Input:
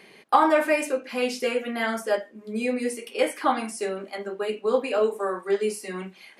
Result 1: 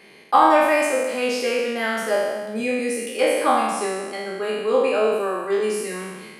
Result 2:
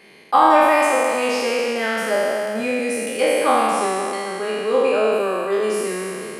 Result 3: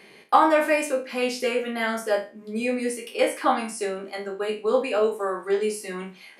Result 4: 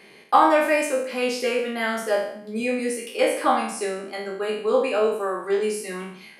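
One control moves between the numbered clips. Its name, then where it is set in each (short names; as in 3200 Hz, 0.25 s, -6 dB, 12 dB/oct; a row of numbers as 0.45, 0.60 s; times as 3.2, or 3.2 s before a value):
spectral trails, RT60: 1.43, 3.07, 0.31, 0.65 s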